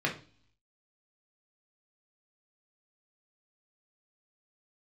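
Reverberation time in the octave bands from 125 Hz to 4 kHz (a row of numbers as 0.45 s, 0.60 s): 0.80 s, 0.65 s, 0.40 s, 0.40 s, 0.40 s, 0.60 s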